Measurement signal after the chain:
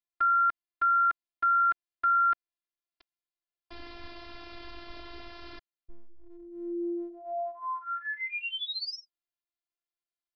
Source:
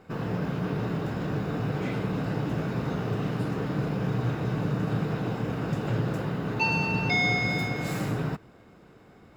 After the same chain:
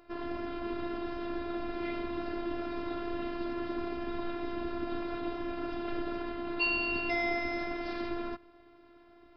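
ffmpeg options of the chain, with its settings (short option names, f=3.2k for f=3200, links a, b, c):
-af "aresample=11025,aresample=44100,afftfilt=real='hypot(re,im)*cos(PI*b)':imag='0':win_size=512:overlap=0.75"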